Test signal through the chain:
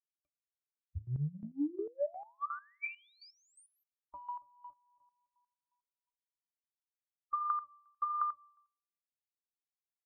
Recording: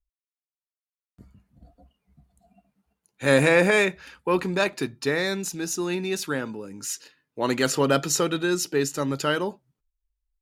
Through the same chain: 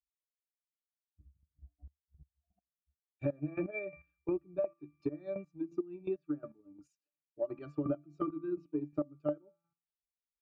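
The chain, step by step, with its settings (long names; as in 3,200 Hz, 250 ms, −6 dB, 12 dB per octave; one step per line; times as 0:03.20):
spectral dynamics exaggerated over time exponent 1.5
parametric band 530 Hz +7.5 dB 1.2 octaves
resonances in every octave D, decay 0.19 s
hum removal 168.3 Hz, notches 15
square-wave tremolo 2.8 Hz, depth 65%, duty 25%
transient designer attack +7 dB, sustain −5 dB
dynamic equaliser 330 Hz, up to +8 dB, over −52 dBFS, Q 3.8
downward compressor 16 to 1, threshold −38 dBFS
treble cut that deepens with the level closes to 2,100 Hz, closed at −42 dBFS
level +7.5 dB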